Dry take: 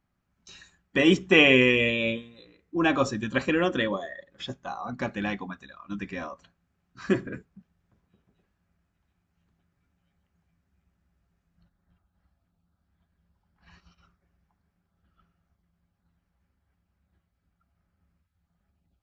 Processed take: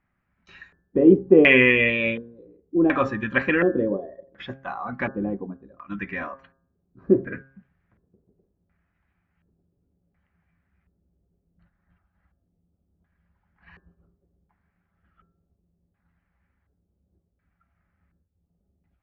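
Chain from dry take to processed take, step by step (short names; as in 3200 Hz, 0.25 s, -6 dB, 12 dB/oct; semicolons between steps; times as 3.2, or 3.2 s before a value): LFO low-pass square 0.69 Hz 440–2000 Hz; de-hum 134.6 Hz, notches 13; gain +1.5 dB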